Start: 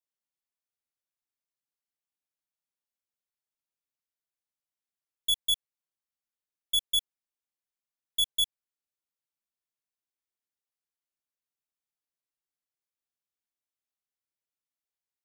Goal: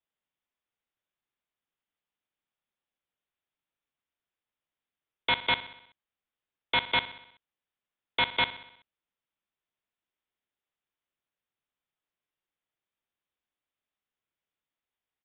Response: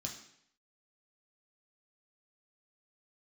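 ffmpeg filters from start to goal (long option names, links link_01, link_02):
-af "aresample=8000,aeval=exprs='(mod(17.8*val(0)+1,2)-1)/17.8':channel_layout=same,aresample=44100,aecho=1:1:63|126|189|252|315|378:0.178|0.103|0.0598|0.0347|0.0201|0.0117,volume=6dB"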